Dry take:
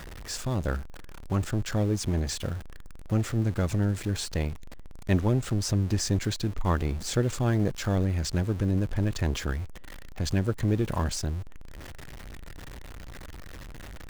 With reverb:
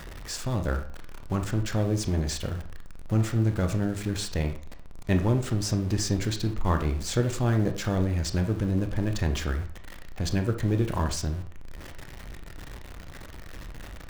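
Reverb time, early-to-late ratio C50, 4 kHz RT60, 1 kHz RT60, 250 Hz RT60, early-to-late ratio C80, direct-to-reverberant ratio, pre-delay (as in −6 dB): 0.45 s, 9.5 dB, 0.35 s, 0.45 s, 0.45 s, 14.0 dB, 6.0 dB, 23 ms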